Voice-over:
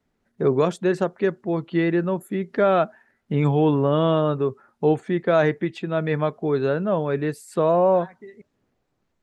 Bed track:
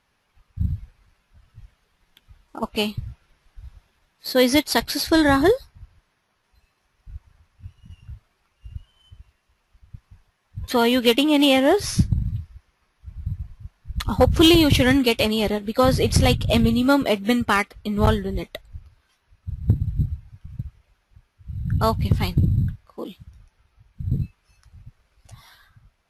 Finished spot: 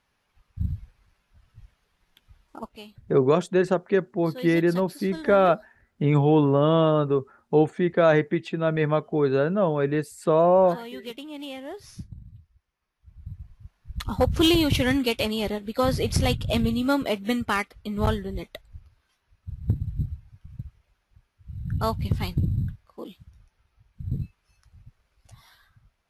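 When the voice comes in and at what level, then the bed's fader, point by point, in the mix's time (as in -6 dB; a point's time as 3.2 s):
2.70 s, 0.0 dB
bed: 2.54 s -4 dB
2.79 s -20.5 dB
12.3 s -20.5 dB
13.75 s -5.5 dB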